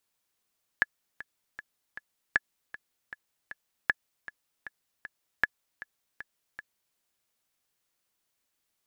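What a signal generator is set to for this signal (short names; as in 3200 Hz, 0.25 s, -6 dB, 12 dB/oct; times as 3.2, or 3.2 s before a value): metronome 156 bpm, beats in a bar 4, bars 4, 1710 Hz, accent 17.5 dB -9 dBFS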